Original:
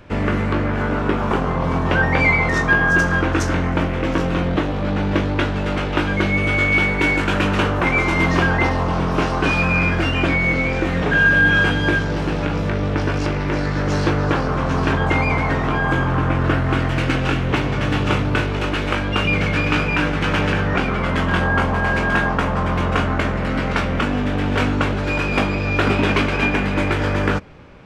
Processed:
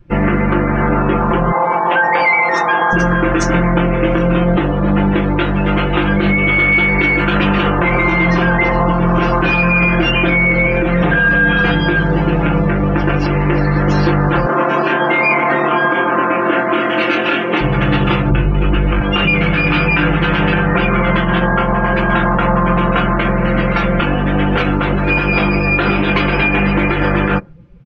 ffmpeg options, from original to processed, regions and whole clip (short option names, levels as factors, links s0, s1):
-filter_complex "[0:a]asettb=1/sr,asplit=3[s0][s1][s2];[s0]atrim=end=1.524[s3];[s1]atrim=start=1.52:end=2.93,asetpts=PTS-STARTPTS,afade=t=in:d=0.004:c=qsin,afade=t=out:st=1.406:d=0.004:c=qsin,highpass=440,equalizer=f=840:t=o:w=0.23:g=10.5[s4];[s2]atrim=start=2.926[s5];[s3][s4]acrossfade=d=0.004:c1=hsin:c2=qsin[s6];[s6][s5]acrossfade=d=0.004:c1=qsin:c2=hsin,asettb=1/sr,asplit=3[s7][s8][s9];[s7]atrim=end=11.154[s10];[s8]atrim=start=11.15:end=11.71,asetpts=PTS-STARTPTS,afade=t=in:d=0.004:c=qsin,afade=t=out:st=0.556:d=0.004:c=qsin,bandreject=f=6900:w=25,aecho=1:1:4.2:0.5,atrim=end_sample=24696[s11];[s9]atrim=start=11.706[s12];[s10][s11]acrossfade=d=0.004:c1=hsin:c2=qsin[s13];[s13][s12]acrossfade=d=0.004:c1=qsin:c2=hsin,asettb=1/sr,asplit=3[s14][s15][s16];[s14]atrim=end=14.464[s17];[s15]atrim=start=14.46:end=17.61,asetpts=PTS-STARTPTS,afade=t=in:d=0.004:c=qsin,afade=t=out:st=3.146:d=0.004:c=qsin,highpass=f=220:w=0.5412,highpass=f=220:w=1.3066,asplit=2[s18][s19];[s19]adelay=26,volume=0.708[s20];[s18][s20]amix=inputs=2:normalize=0,atrim=end_sample=138915[s21];[s16]atrim=start=17.606[s22];[s17][s21]acrossfade=d=0.004:c1=hsin:c2=qsin[s23];[s23][s22]acrossfade=d=0.004:c1=qsin:c2=hsin,asettb=1/sr,asplit=3[s24][s25][s26];[s24]atrim=end=18.304[s27];[s25]atrim=start=18.3:end=19.01,asetpts=PTS-STARTPTS,afade=t=in:d=0.004:c=qsin,afade=t=out:st=0.706:d=0.004:c=qsin,aemphasis=mode=reproduction:type=bsi,acrossover=split=110|2500[s28][s29][s30];[s28]acompressor=threshold=0.112:ratio=4[s31];[s29]acompressor=threshold=0.0891:ratio=4[s32];[s30]acompressor=threshold=0.02:ratio=4[s33];[s31][s32][s33]amix=inputs=3:normalize=0,volume=3.35,asoftclip=hard,volume=0.299[s34];[s26]atrim=start=19.006[s35];[s27][s34]acrossfade=d=0.004:c1=hsin:c2=qsin[s36];[s36][s35]acrossfade=d=0.004:c1=qsin:c2=hsin,afftdn=nr=23:nf=-33,aecho=1:1:5.8:0.97,alimiter=limit=0.335:level=0:latency=1:release=67,volume=1.78"